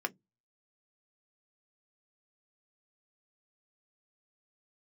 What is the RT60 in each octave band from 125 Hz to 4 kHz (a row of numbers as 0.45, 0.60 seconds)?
0.35, 0.25, 0.15, 0.10, 0.10, 0.10 seconds